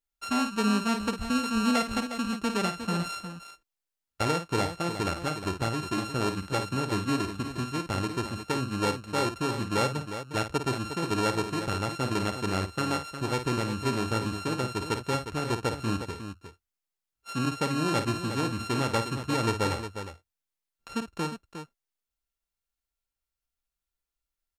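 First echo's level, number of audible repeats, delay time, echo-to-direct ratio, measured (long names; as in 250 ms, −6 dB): −9.0 dB, 2, 53 ms, −6.0 dB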